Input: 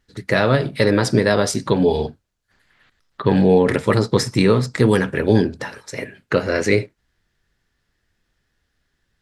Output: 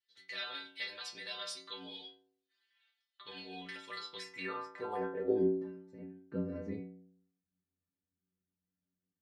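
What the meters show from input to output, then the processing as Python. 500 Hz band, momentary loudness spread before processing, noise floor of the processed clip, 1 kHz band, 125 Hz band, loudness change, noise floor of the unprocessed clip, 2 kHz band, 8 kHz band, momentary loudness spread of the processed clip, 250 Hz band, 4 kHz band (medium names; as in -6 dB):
-21.5 dB, 14 LU, under -85 dBFS, -20.0 dB, -29.0 dB, -21.5 dB, -72 dBFS, -21.0 dB, under -20 dB, 17 LU, -22.5 dB, -14.0 dB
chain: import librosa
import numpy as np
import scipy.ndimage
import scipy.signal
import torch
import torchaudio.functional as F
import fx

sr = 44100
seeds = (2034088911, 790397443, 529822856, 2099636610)

y = fx.filter_sweep_bandpass(x, sr, from_hz=3400.0, to_hz=220.0, start_s=4.02, end_s=5.66, q=2.4)
y = fx.stiff_resonator(y, sr, f0_hz=89.0, decay_s=0.85, stiffness=0.008)
y = F.gain(torch.from_numpy(y), 4.5).numpy()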